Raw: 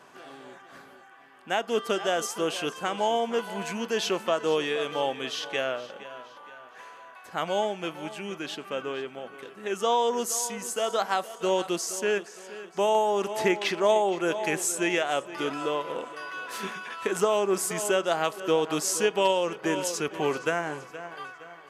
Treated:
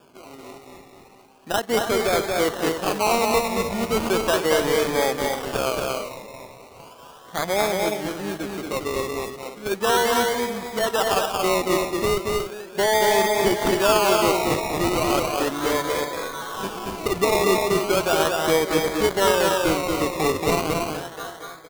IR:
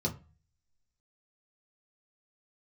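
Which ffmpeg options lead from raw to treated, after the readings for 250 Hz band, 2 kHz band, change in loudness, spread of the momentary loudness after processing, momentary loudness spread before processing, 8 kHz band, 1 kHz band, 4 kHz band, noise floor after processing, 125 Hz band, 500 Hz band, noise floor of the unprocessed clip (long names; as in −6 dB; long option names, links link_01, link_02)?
+7.0 dB, +6.0 dB, +5.5 dB, 11 LU, 17 LU, +3.0 dB, +6.0 dB, +6.0 dB, −46 dBFS, +10.0 dB, +5.5 dB, −50 dBFS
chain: -filter_complex "[0:a]asplit=2[link_01][link_02];[link_02]alimiter=limit=-19.5dB:level=0:latency=1,volume=-1dB[link_03];[link_01][link_03]amix=inputs=2:normalize=0,adynamicsmooth=sensitivity=2.5:basefreq=520,acrusher=samples=22:mix=1:aa=0.000001:lfo=1:lforange=13.2:lforate=0.36,aecho=1:1:230.3|291.5:0.708|0.355"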